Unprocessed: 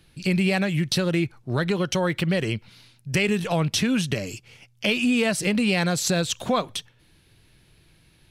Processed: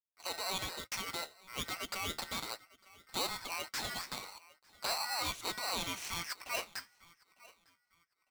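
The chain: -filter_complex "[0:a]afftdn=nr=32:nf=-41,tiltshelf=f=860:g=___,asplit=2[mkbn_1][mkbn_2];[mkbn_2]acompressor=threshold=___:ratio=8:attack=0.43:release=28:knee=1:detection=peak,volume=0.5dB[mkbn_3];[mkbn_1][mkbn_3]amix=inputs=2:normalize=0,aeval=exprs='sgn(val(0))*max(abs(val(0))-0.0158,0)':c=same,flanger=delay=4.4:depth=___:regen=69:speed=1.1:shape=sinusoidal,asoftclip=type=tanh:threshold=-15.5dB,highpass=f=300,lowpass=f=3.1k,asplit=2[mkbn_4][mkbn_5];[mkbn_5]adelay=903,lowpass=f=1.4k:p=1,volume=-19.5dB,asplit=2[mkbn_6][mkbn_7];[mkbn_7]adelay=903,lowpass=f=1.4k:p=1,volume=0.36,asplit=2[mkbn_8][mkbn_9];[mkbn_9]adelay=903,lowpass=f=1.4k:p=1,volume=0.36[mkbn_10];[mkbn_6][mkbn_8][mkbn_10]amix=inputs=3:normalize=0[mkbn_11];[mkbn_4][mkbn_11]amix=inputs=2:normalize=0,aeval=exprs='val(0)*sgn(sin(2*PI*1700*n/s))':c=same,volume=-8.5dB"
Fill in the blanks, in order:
-8.5, -31dB, 9.7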